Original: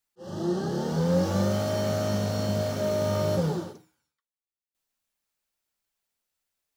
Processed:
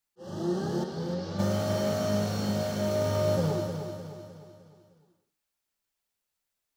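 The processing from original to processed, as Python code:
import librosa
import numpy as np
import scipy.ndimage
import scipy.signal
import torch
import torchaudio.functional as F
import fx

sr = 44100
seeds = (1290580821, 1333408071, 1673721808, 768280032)

p1 = fx.ladder_lowpass(x, sr, hz=5500.0, resonance_pct=45, at=(0.83, 1.38), fade=0.02)
p2 = p1 + fx.echo_feedback(p1, sr, ms=305, feedback_pct=46, wet_db=-7.5, dry=0)
y = p2 * librosa.db_to_amplitude(-2.0)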